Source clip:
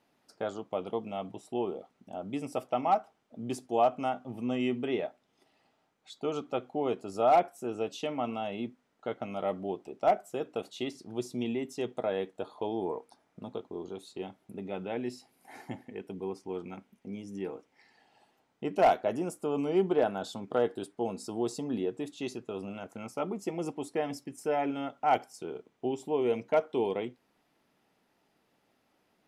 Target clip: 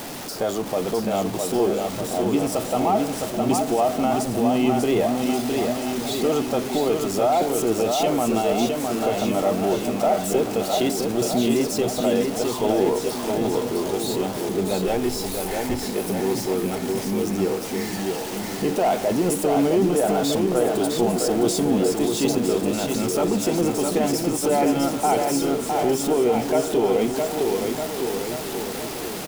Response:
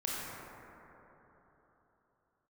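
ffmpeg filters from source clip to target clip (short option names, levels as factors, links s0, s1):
-filter_complex "[0:a]aeval=exprs='val(0)+0.5*0.0119*sgn(val(0))':c=same,highshelf=f=3100:g=10.5,acrossover=split=980[s0][s1];[s0]acontrast=89[s2];[s2][s1]amix=inputs=2:normalize=0,alimiter=limit=0.141:level=0:latency=1:release=15,asplit=2[s3][s4];[s4]aecho=0:1:660|1254|1789|2270|2703:0.631|0.398|0.251|0.158|0.1[s5];[s3][s5]amix=inputs=2:normalize=0,asplit=3[s6][s7][s8];[s6]afade=t=out:st=14.85:d=0.02[s9];[s7]asubboost=boost=8.5:cutoff=53,afade=t=in:st=14.85:d=0.02,afade=t=out:st=15.85:d=0.02[s10];[s8]afade=t=in:st=15.85:d=0.02[s11];[s9][s10][s11]amix=inputs=3:normalize=0,volume=1.5"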